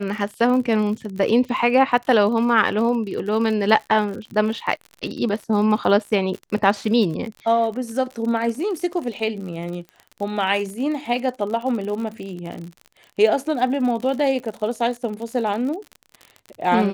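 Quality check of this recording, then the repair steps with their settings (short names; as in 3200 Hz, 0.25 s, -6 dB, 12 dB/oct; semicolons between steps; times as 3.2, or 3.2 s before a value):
crackle 51/s -29 dBFS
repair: de-click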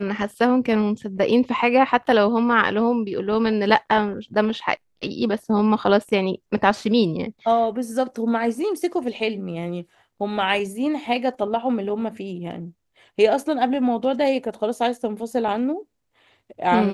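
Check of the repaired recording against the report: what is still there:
none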